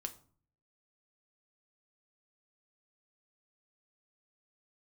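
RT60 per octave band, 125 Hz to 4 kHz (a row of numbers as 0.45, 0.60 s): 0.80, 0.65, 0.50, 0.45, 0.35, 0.30 s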